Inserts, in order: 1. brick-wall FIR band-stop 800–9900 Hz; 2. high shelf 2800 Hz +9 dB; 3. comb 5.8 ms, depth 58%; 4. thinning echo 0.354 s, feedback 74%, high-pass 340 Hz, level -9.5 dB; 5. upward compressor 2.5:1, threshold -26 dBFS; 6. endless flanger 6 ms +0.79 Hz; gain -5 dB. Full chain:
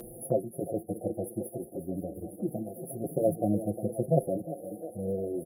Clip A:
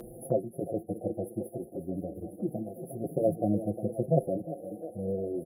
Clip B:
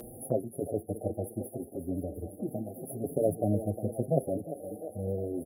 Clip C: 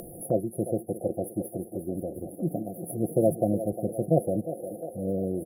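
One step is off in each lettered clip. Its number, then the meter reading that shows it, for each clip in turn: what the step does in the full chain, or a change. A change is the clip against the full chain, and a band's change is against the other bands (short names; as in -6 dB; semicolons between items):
2, 8 kHz band -7.0 dB; 3, 125 Hz band +1.5 dB; 6, loudness change +3.0 LU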